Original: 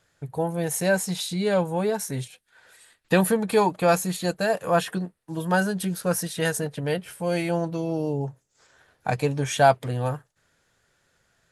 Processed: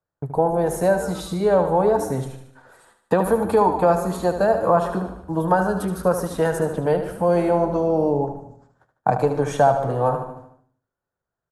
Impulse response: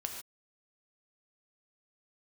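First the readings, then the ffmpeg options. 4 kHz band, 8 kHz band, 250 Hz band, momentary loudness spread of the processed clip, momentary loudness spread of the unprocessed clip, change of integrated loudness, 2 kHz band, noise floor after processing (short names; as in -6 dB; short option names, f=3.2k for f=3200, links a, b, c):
-7.5 dB, -6.0 dB, +2.5 dB, 9 LU, 11 LU, +4.0 dB, -3.0 dB, under -85 dBFS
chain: -filter_complex "[0:a]asplit=2[a][b];[b]asplit=3[c][d][e];[c]adelay=121,afreqshift=-130,volume=-17.5dB[f];[d]adelay=242,afreqshift=-260,volume=-26.4dB[g];[e]adelay=363,afreqshift=-390,volume=-35.2dB[h];[f][g][h]amix=inputs=3:normalize=0[i];[a][i]amix=inputs=2:normalize=0,acrossover=split=85|360[j][k][l];[j]acompressor=threshold=-53dB:ratio=4[m];[k]acompressor=threshold=-37dB:ratio=4[n];[l]acompressor=threshold=-26dB:ratio=4[o];[m][n][o]amix=inputs=3:normalize=0,agate=range=-26dB:threshold=-55dB:ratio=16:detection=peak,highshelf=f=1.6k:t=q:w=1.5:g=-13.5,asplit=2[p][q];[q]aecho=0:1:75|150|225|300|375|450:0.355|0.181|0.0923|0.0471|0.024|0.0122[r];[p][r]amix=inputs=2:normalize=0,volume=9dB"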